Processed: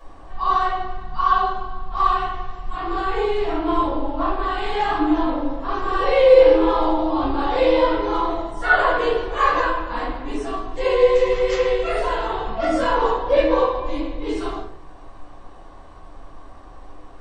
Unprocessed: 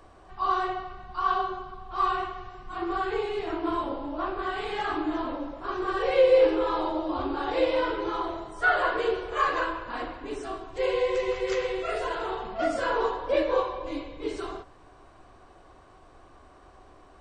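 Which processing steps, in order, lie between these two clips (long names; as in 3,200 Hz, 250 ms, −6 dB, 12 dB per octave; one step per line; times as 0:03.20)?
rectangular room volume 240 cubic metres, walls furnished, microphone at 5.7 metres
level −3.5 dB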